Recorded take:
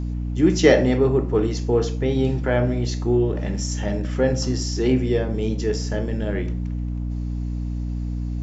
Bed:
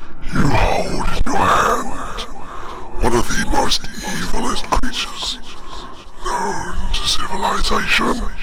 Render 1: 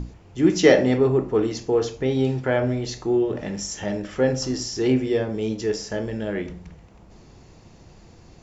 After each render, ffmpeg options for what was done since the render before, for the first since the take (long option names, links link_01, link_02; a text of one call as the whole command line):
ffmpeg -i in.wav -af "bandreject=frequency=60:width_type=h:width=6,bandreject=frequency=120:width_type=h:width=6,bandreject=frequency=180:width_type=h:width=6,bandreject=frequency=240:width_type=h:width=6,bandreject=frequency=300:width_type=h:width=6" out.wav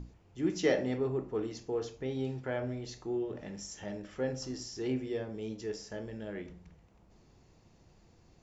ffmpeg -i in.wav -af "volume=-13.5dB" out.wav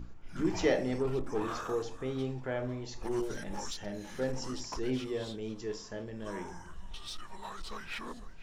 ffmpeg -i in.wav -i bed.wav -filter_complex "[1:a]volume=-25.5dB[link_01];[0:a][link_01]amix=inputs=2:normalize=0" out.wav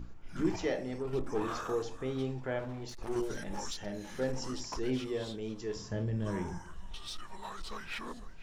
ffmpeg -i in.wav -filter_complex "[0:a]asettb=1/sr,asplit=3[link_01][link_02][link_03];[link_01]atrim=end=2.594[link_04];[link_02]atrim=start=2.59:end=3.16,asetpts=PTS-STARTPTS,afade=type=in:duration=0.004:curve=qsin,afade=type=out:start_time=0.566:duration=0.004:curve=qsin,aeval=exprs='clip(val(0),-1,0.00794)':channel_layout=same[link_05];[link_03]atrim=start=3.156[link_06];[link_04][link_05]acrossfade=duration=0.004:curve1=hsin:curve2=qsin[link_07];[link_07][link_06]acrossfade=duration=0.004:curve1=qsin:curve2=hsin,asettb=1/sr,asplit=3[link_08][link_09][link_10];[link_08]atrim=end=5.764[link_11];[link_09]atrim=start=5.76:end=6.58,asetpts=PTS-STARTPTS,afade=type=in:duration=0.004:curve=qsin,afade=type=out:start_time=0.816:duration=0.004:curve=qsin,equalizer=frequency=110:width_type=o:width=1.8:gain=14.5[link_12];[link_10]atrim=start=6.576[link_13];[link_11][link_12]acrossfade=duration=0.004:curve1=hsin:curve2=qsin[link_14];[link_14][link_13]acrossfade=duration=0.004:curve1=qsin:curve2=hsin,asplit=3[link_15][link_16][link_17];[link_15]atrim=end=0.562[link_18];[link_16]atrim=start=0.558:end=1.132,asetpts=PTS-STARTPTS,volume=-5.5dB[link_19];[link_17]atrim=start=1.128[link_20];[link_18][link_19]acrossfade=duration=0.004:curve1=hsin:curve2=hsin[link_21];[link_21][link_20]acrossfade=duration=0.004:curve1=hsin:curve2=hsin" out.wav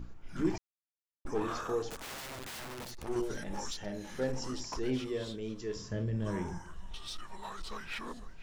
ffmpeg -i in.wav -filter_complex "[0:a]asettb=1/sr,asplit=3[link_01][link_02][link_03];[link_01]atrim=end=1.904[link_04];[link_02]atrim=start=1.9:end=3.03,asetpts=PTS-STARTPTS,afade=type=in:duration=0.004:curve=qsin,afade=type=out:start_time=1.126:duration=0.004:curve=qsin,aeval=exprs='(mod(84.1*val(0)+1,2)-1)/84.1':channel_layout=same[link_05];[link_03]atrim=start=3.026[link_06];[link_04][link_05]acrossfade=duration=0.004:curve1=hsin:curve2=qsin[link_07];[link_07][link_06]acrossfade=duration=0.004:curve1=qsin:curve2=hsin,asettb=1/sr,asplit=3[link_08][link_09][link_10];[link_08]atrim=end=5.094[link_11];[link_09]atrim=start=5.09:end=6.15,asetpts=PTS-STARTPTS,afade=type=in:duration=0.004:curve=qsin,afade=type=out:start_time=1.056:duration=0.004:curve=qsin,equalizer=frequency=800:width_type=o:width=0.35:gain=-9[link_12];[link_10]atrim=start=6.146[link_13];[link_11][link_12]acrossfade=duration=0.004:curve1=hsin:curve2=qsin[link_14];[link_14][link_13]acrossfade=duration=0.004:curve1=qsin:curve2=hsin,asplit=3[link_15][link_16][link_17];[link_15]atrim=end=0.58,asetpts=PTS-STARTPTS,afade=type=out:start_time=0.576:duration=0.004:curve=hsin[link_18];[link_16]atrim=start=0.58:end=1.25,asetpts=PTS-STARTPTS,volume=0[link_19];[link_17]atrim=start=1.25,asetpts=PTS-STARTPTS,afade=type=in:duration=0.004:curve=hsin[link_20];[link_18][link_19][link_20]concat=n=3:v=0:a=1" out.wav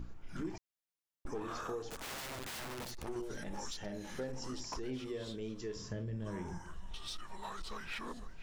ffmpeg -i in.wav -af "acompressor=threshold=-38dB:ratio=4" out.wav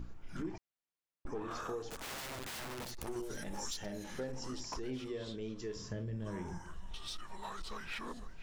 ffmpeg -i in.wav -filter_complex "[0:a]asettb=1/sr,asplit=3[link_01][link_02][link_03];[link_01]atrim=end=0.424[link_04];[link_02]atrim=start=0.42:end=1.51,asetpts=PTS-STARTPTS,afade=type=in:duration=0.004:curve=qsin,afade=type=out:start_time=1.086:duration=0.004:curve=qsin,highshelf=frequency=4800:gain=-10.5[link_05];[link_03]atrim=start=1.506[link_06];[link_04][link_05]acrossfade=duration=0.004:curve1=hsin:curve2=qsin[link_07];[link_07][link_06]acrossfade=duration=0.004:curve1=qsin:curve2=hsin,asettb=1/sr,asplit=3[link_08][link_09][link_10];[link_08]atrim=end=3.014[link_11];[link_09]atrim=start=3.01:end=4.04,asetpts=PTS-STARTPTS,afade=type=in:duration=0.004:curve=qsin,afade=type=out:start_time=1.026:duration=0.004:curve=qsin,highshelf=frequency=7500:gain=11[link_12];[link_10]atrim=start=4.036[link_13];[link_11][link_12]acrossfade=duration=0.004:curve1=hsin:curve2=qsin[link_14];[link_14][link_13]acrossfade=duration=0.004:curve1=qsin:curve2=hsin,asettb=1/sr,asplit=3[link_15][link_16][link_17];[link_15]atrim=end=5.084[link_18];[link_16]atrim=start=5.08:end=5.59,asetpts=PTS-STARTPTS,afade=type=in:duration=0.004:curve=qsin,afade=type=out:start_time=0.506:duration=0.004:curve=qsin,lowpass=7000[link_19];[link_17]atrim=start=5.586[link_20];[link_18][link_19]acrossfade=duration=0.004:curve1=hsin:curve2=qsin[link_21];[link_21][link_20]acrossfade=duration=0.004:curve1=qsin:curve2=hsin" out.wav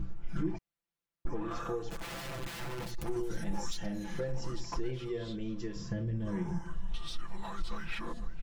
ffmpeg -i in.wav -af "bass=frequency=250:gain=7,treble=frequency=4000:gain=-5,aecho=1:1:5.9:0.83" out.wav